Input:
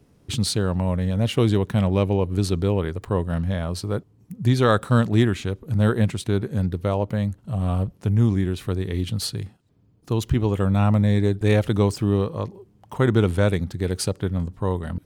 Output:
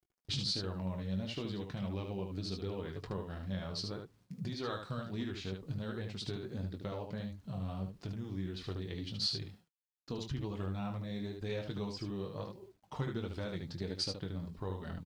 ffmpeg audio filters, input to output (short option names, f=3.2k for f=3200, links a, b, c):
-af "agate=range=-33dB:threshold=-44dB:ratio=3:detection=peak,acompressor=threshold=-28dB:ratio=6,lowpass=f=4.8k:t=q:w=3.1,acrusher=bits=10:mix=0:aa=0.000001,flanger=delay=2.2:depth=5.2:regen=41:speed=1.5:shape=triangular,aecho=1:1:21|74:0.376|0.531,volume=-5dB"